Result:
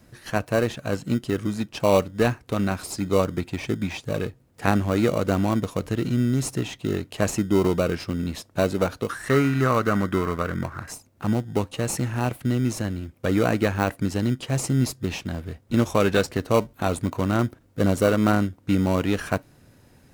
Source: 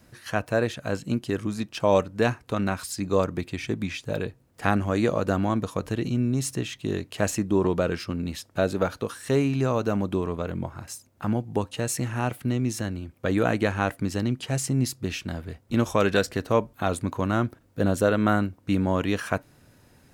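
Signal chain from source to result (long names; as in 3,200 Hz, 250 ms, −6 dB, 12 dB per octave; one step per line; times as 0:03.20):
in parallel at −8.5 dB: sample-rate reduction 1,700 Hz, jitter 0%
0:09.09–0:10.92: on the sum: flat-topped bell 1,500 Hz +10 dB 1.1 octaves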